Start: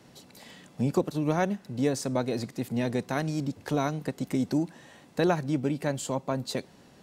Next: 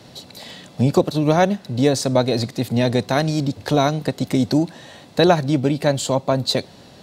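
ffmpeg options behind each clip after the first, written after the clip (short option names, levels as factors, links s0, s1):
-af "equalizer=f=100:t=o:w=0.67:g=7,equalizer=f=630:t=o:w=0.67:g=5,equalizer=f=4000:t=o:w=0.67:g=9,volume=2.51"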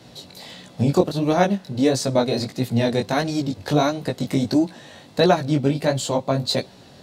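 -af "flanger=delay=15.5:depth=6.4:speed=1.5,volume=1.12"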